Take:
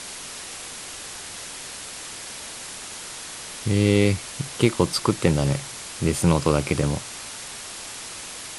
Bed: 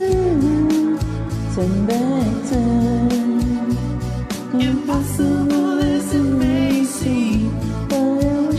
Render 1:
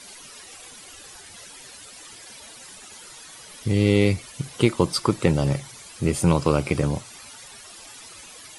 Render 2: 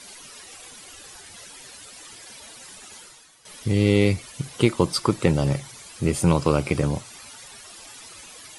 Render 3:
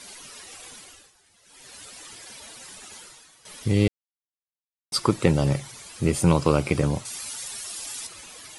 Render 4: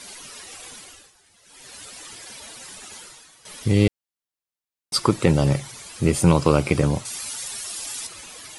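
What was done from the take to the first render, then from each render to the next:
noise reduction 13 dB, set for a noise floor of -37 dBFS
2.98–3.45 s: fade out quadratic, to -13 dB
0.75–1.80 s: dip -17 dB, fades 0.37 s; 3.88–4.92 s: mute; 7.05–8.07 s: treble shelf 3.8 kHz +11.5 dB
trim +3 dB; peak limiter -3 dBFS, peak gain reduction 2 dB

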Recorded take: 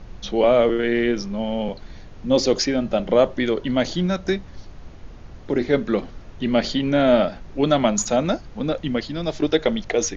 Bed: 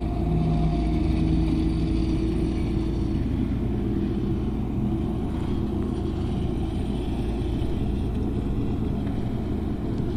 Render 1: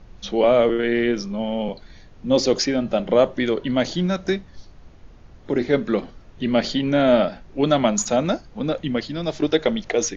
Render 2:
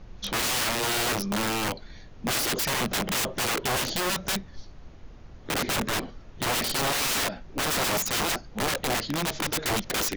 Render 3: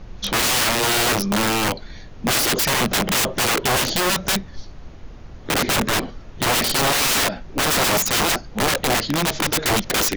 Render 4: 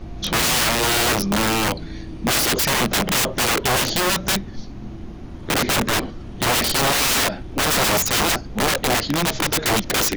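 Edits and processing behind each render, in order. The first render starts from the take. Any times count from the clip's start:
noise print and reduce 6 dB
integer overflow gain 21.5 dB
trim +7.5 dB
add bed -10.5 dB

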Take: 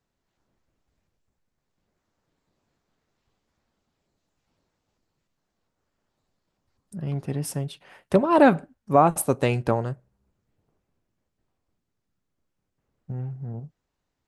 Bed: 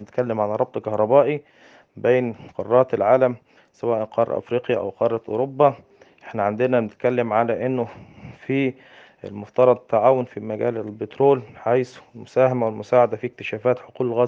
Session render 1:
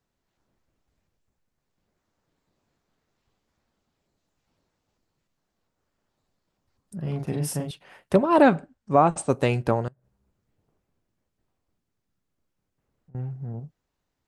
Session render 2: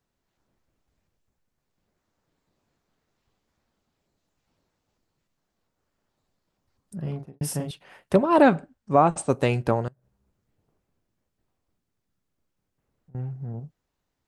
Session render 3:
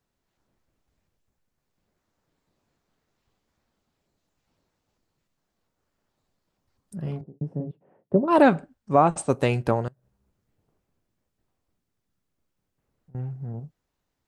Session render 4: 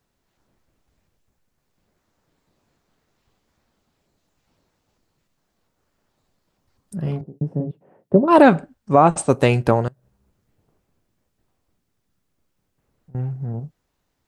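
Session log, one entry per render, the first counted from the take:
7.00–7.71 s: doubling 40 ms -3 dB; 8.42–9.30 s: elliptic low-pass 8.5 kHz; 9.88–13.15 s: compression 10:1, threshold -53 dBFS
6.99–7.41 s: studio fade out
7.21–8.28 s: Butterworth band-pass 250 Hz, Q 0.63
trim +6.5 dB; peak limiter -2 dBFS, peak gain reduction 2.5 dB

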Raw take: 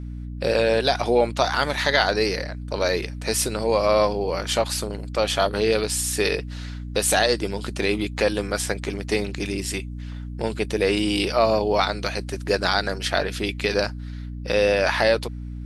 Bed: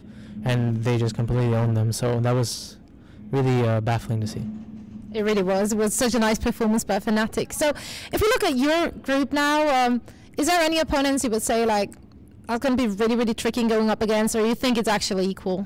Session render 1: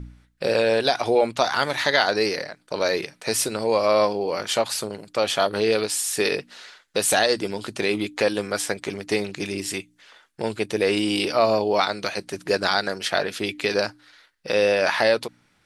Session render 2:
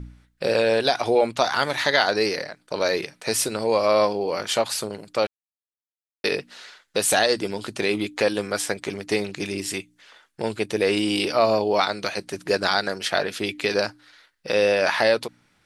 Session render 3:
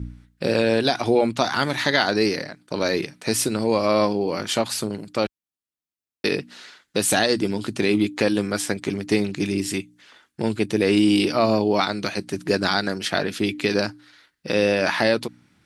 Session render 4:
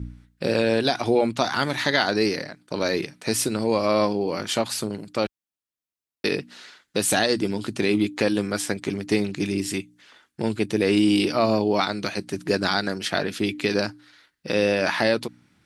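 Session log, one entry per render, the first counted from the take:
de-hum 60 Hz, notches 5
5.27–6.24 s: mute
high-pass 47 Hz; resonant low shelf 380 Hz +6.5 dB, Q 1.5
trim -1.5 dB

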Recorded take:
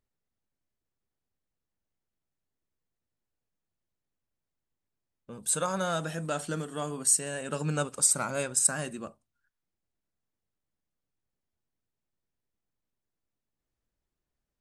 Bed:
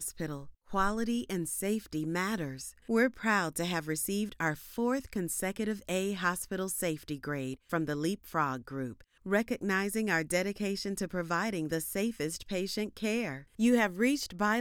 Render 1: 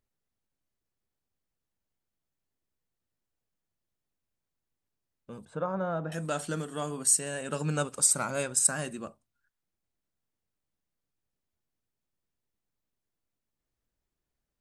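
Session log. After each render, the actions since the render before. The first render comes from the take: 5.45–6.12 s: low-pass 1.1 kHz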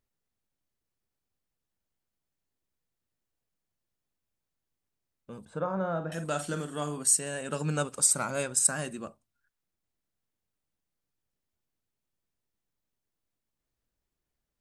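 5.41–6.98 s: doubling 47 ms -9.5 dB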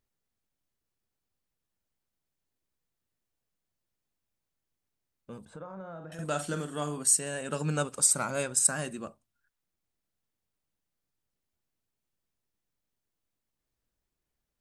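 5.37–6.19 s: compression 3:1, threshold -43 dBFS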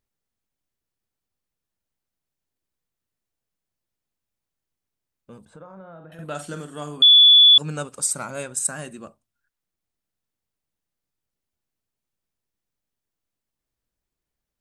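5.79–6.35 s: high-order bell 6.6 kHz -13.5 dB 1.1 oct; 7.02–7.58 s: bleep 3.44 kHz -8 dBFS; 8.26–8.93 s: peaking EQ 5 kHz -6 dB 0.27 oct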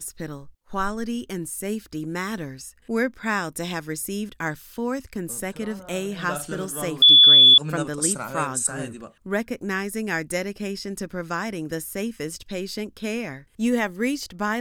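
add bed +3.5 dB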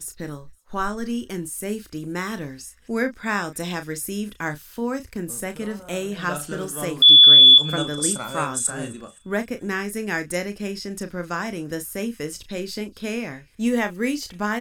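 doubling 34 ms -10 dB; feedback echo behind a high-pass 259 ms, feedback 52%, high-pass 2.8 kHz, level -24 dB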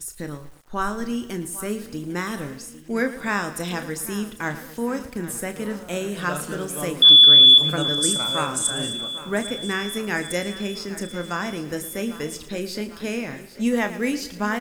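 feedback delay 800 ms, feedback 58%, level -16 dB; bit-crushed delay 113 ms, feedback 55%, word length 7-bit, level -14 dB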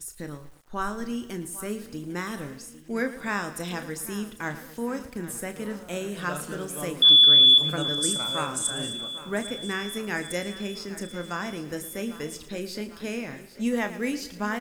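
trim -4.5 dB

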